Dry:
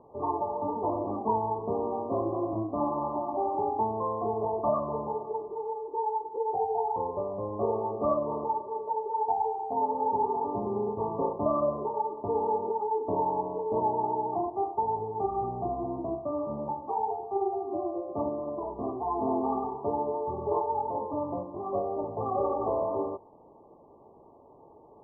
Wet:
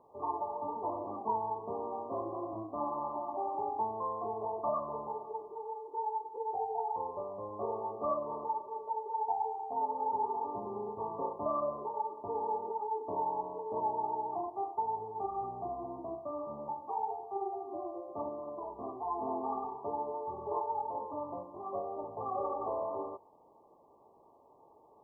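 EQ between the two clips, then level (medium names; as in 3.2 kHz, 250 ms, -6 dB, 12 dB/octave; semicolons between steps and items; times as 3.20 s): tilt shelf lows -4.5 dB, about 1.1 kHz; bass shelf 450 Hz -6.5 dB; -2.5 dB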